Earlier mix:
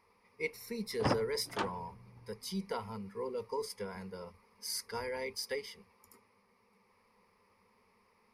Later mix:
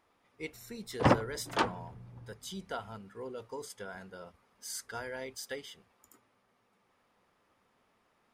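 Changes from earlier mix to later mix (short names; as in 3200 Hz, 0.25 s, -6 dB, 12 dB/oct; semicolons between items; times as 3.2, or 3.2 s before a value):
speech: remove ripple EQ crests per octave 0.87, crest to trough 13 dB; background +7.0 dB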